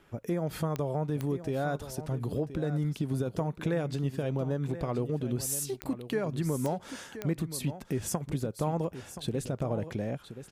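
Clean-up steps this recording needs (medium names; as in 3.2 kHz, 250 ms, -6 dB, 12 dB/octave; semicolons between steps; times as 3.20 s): de-click; inverse comb 1025 ms -12 dB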